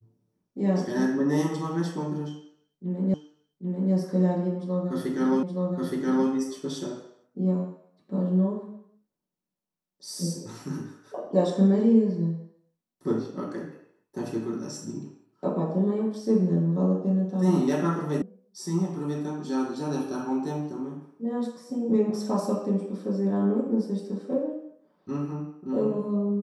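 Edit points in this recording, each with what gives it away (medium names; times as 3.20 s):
3.14 s: repeat of the last 0.79 s
5.43 s: repeat of the last 0.87 s
18.22 s: sound stops dead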